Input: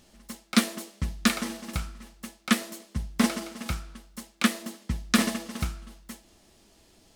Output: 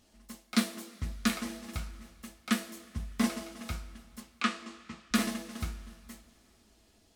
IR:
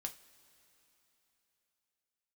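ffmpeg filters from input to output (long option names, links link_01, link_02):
-filter_complex "[0:a]asettb=1/sr,asplit=3[link_01][link_02][link_03];[link_01]atrim=end=4.204[link_04];[link_02]atrim=start=4.2:end=5.11,asetpts=PTS-STARTPTS,afade=type=in:duration=0.004:curve=qsin,afade=type=out:start_time=0.906:duration=0.004:curve=qsin,highpass=260,equalizer=frequency=590:width_type=q:width=4:gain=-5,equalizer=frequency=1200:width_type=q:width=4:gain=8,equalizer=frequency=2600:width_type=q:width=4:gain=4,equalizer=frequency=6000:width_type=q:width=4:gain=-3,lowpass=frequency=7200:width=0.5412,lowpass=frequency=7200:width=1.3066[link_05];[link_03]atrim=start=5.106[link_06];[link_04][link_05]acrossfade=duration=0.004:curve1=hsin:curve2=qsin[link_07];[link_07][link_06]acrossfade=duration=0.004:curve1=qsin:curve2=hsin[link_08];[1:a]atrim=start_sample=2205,asetrate=52920,aresample=44100[link_09];[link_08][link_09]afir=irnorm=-1:irlink=0,volume=-2.5dB"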